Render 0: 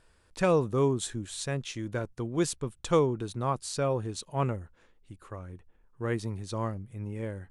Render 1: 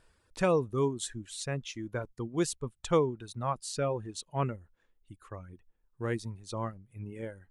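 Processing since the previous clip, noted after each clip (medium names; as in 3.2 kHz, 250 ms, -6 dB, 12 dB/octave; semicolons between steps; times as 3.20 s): reverb removal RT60 1.8 s; trim -1.5 dB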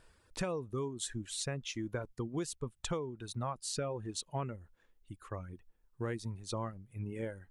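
compression 12:1, threshold -35 dBFS, peak gain reduction 15.5 dB; trim +2 dB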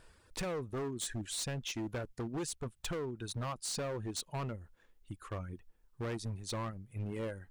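hard clipper -37 dBFS, distortion -9 dB; trim +3 dB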